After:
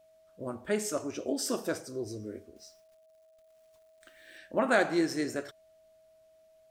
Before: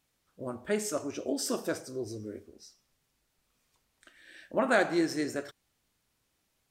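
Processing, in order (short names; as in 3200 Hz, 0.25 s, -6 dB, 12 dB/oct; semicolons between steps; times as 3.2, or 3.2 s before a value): 2.56–4.38 companded quantiser 6-bit; whine 640 Hz -59 dBFS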